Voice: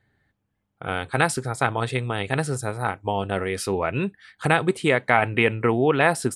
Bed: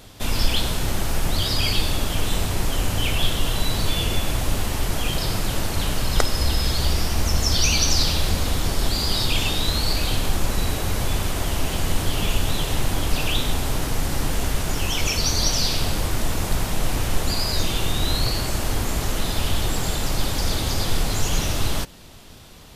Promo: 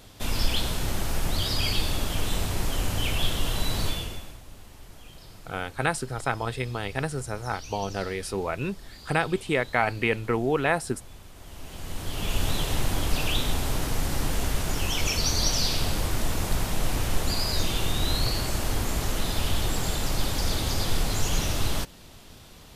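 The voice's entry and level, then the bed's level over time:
4.65 s, -5.0 dB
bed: 3.86 s -4.5 dB
4.42 s -23.5 dB
11.31 s -23.5 dB
12.43 s -3.5 dB

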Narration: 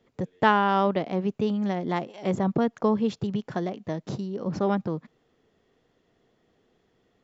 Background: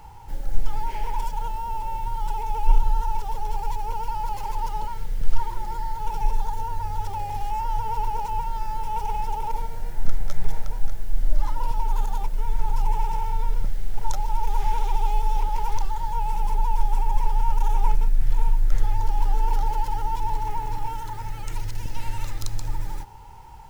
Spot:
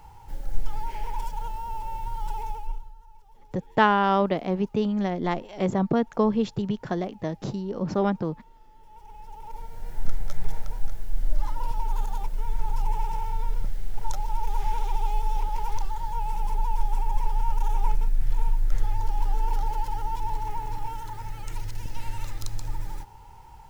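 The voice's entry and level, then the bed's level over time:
3.35 s, +1.0 dB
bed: 2.47 s -4 dB
2.95 s -26.5 dB
8.72 s -26.5 dB
9.97 s -3.5 dB

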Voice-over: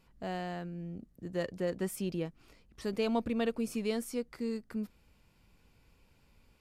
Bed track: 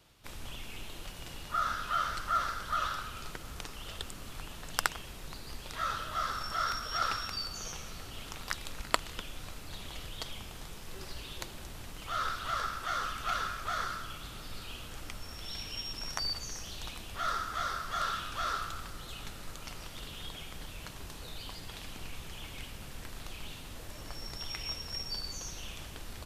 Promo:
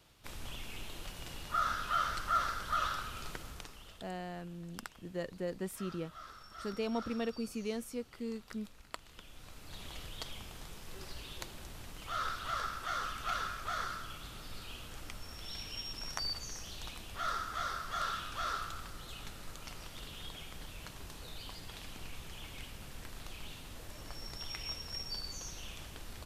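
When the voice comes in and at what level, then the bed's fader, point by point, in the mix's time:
3.80 s, -4.5 dB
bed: 3.39 s -1 dB
4.18 s -16.5 dB
8.92 s -16.5 dB
9.83 s -3 dB

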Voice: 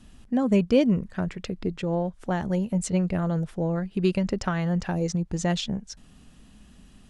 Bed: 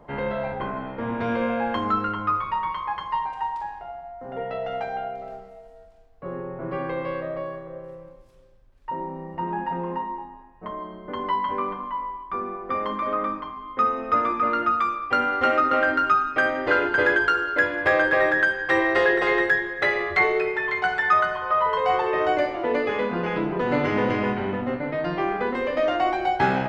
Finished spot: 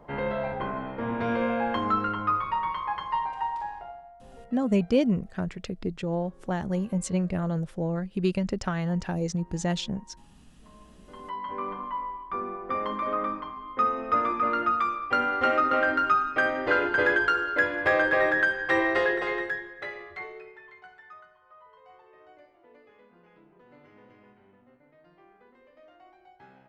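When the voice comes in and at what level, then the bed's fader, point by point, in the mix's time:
4.20 s, -2.5 dB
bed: 3.79 s -2 dB
4.61 s -25 dB
10.62 s -25 dB
11.78 s -3 dB
18.87 s -3 dB
21.35 s -32.5 dB

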